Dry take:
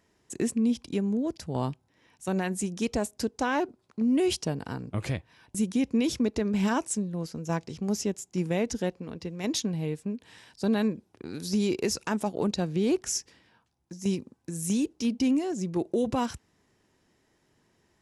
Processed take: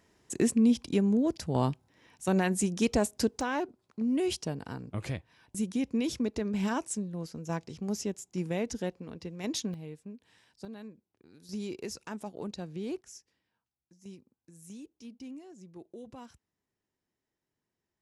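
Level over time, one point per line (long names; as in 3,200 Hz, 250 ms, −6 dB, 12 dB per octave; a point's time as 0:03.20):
+2 dB
from 0:03.41 −4.5 dB
from 0:09.74 −12 dB
from 0:10.65 −19.5 dB
from 0:11.49 −11 dB
from 0:13.01 −19.5 dB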